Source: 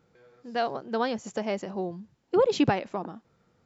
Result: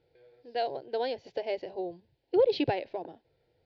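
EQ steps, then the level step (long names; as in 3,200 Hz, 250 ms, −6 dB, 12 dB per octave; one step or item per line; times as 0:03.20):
elliptic low-pass filter 4,600 Hz, stop band 50 dB
phaser with its sweep stopped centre 500 Hz, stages 4
0.0 dB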